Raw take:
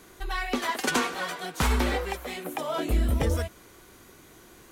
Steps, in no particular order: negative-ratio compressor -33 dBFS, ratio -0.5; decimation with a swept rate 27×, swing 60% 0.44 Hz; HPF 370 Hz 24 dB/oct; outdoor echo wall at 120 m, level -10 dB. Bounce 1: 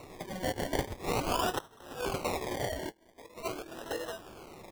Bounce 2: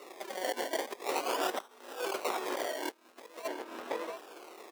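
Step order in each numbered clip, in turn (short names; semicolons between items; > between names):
outdoor echo > negative-ratio compressor > HPF > decimation with a swept rate; decimation with a swept rate > outdoor echo > negative-ratio compressor > HPF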